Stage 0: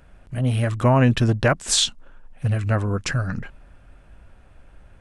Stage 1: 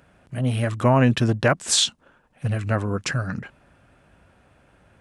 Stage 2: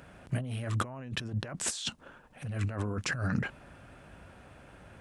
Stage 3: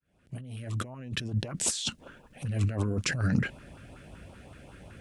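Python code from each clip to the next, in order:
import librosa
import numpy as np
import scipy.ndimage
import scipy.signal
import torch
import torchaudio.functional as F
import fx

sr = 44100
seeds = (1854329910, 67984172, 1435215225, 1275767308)

y1 = scipy.signal.sosfilt(scipy.signal.butter(2, 110.0, 'highpass', fs=sr, output='sos'), x)
y2 = fx.over_compress(y1, sr, threshold_db=-31.0, ratio=-1.0)
y2 = y2 * librosa.db_to_amplitude(-4.0)
y3 = fx.fade_in_head(y2, sr, length_s=1.51)
y3 = fx.filter_lfo_notch(y3, sr, shape='saw_up', hz=5.3, low_hz=600.0, high_hz=2000.0, q=0.82)
y3 = y3 * librosa.db_to_amplitude(5.0)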